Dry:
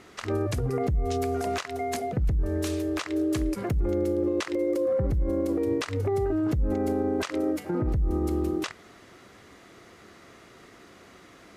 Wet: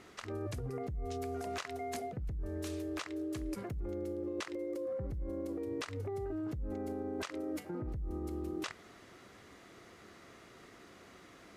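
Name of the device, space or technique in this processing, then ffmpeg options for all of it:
compression on the reversed sound: -af "areverse,acompressor=threshold=0.0282:ratio=6,areverse,volume=0.562"

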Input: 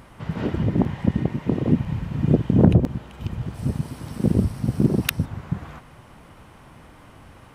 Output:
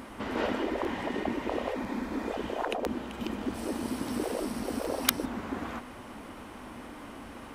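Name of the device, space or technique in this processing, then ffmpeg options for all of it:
valve amplifier with mains hum: -filter_complex "[0:a]asettb=1/sr,asplit=3[s0][s1][s2];[s0]atrim=end=1.734[s3];[s1]atrim=start=1.73:end=2.32,asetpts=PTS-STARTPTS,afade=t=in:d=0.004:c=qsin,afade=t=out:st=0.586:d=0.004:c=qsin,equalizer=f=2900:w=7.1:g=-12.5[s4];[s2]atrim=start=2.316[s5];[s3][s4]acrossfade=d=0.004:c1=hsin:c2=qsin[s6];[s6][s5]acrossfade=d=0.004:c1=qsin:c2=hsin,afftfilt=real='re*lt(hypot(re,im),0.2)':imag='im*lt(hypot(re,im),0.2)':win_size=1024:overlap=0.75,lowshelf=f=190:t=q:w=3:g=-7,aeval=exprs='(tanh(2.82*val(0)+0.15)-tanh(0.15))/2.82':c=same,aeval=exprs='val(0)+0.000708*(sin(2*PI*50*n/s)+sin(2*PI*2*50*n/s)/2+sin(2*PI*3*50*n/s)/3+sin(2*PI*4*50*n/s)/4+sin(2*PI*5*50*n/s)/5)':c=same,volume=1.5"

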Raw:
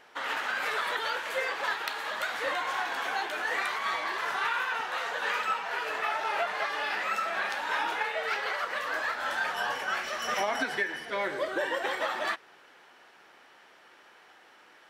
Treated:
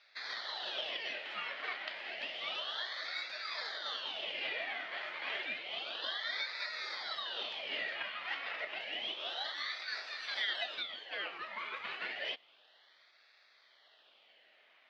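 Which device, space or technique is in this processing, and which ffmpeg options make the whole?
voice changer toy: -af "aeval=exprs='val(0)*sin(2*PI*1800*n/s+1800*0.7/0.3*sin(2*PI*0.3*n/s))':c=same,highpass=530,equalizer=f=620:t=q:w=4:g=7,equalizer=f=990:t=q:w=4:g=-4,equalizer=f=1900:t=q:w=4:g=7,equalizer=f=3100:t=q:w=4:g=7,equalizer=f=4400:t=q:w=4:g=3,lowpass=f=4600:w=0.5412,lowpass=f=4600:w=1.3066,volume=0.376"

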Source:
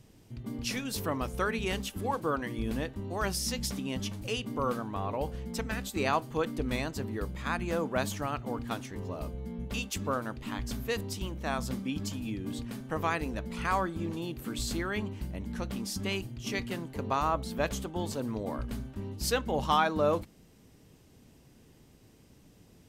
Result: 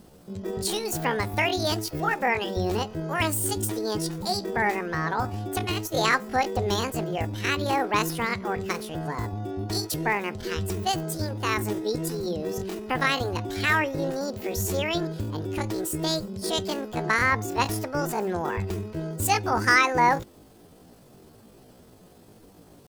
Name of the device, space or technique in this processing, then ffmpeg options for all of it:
chipmunk voice: -af "asetrate=72056,aresample=44100,atempo=0.612027,volume=2.11"

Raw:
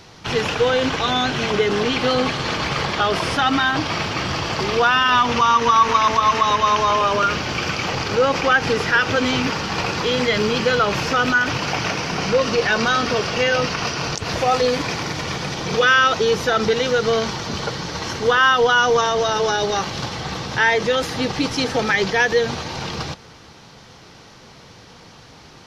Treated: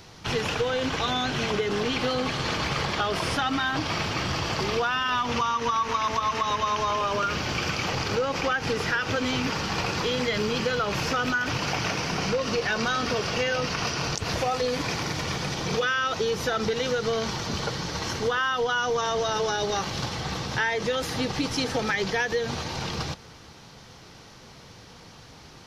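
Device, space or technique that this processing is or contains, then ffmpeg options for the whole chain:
ASMR close-microphone chain: -af "lowshelf=f=110:g=4.5,acompressor=threshold=0.126:ratio=6,highshelf=f=9200:g=7.5,volume=0.596"

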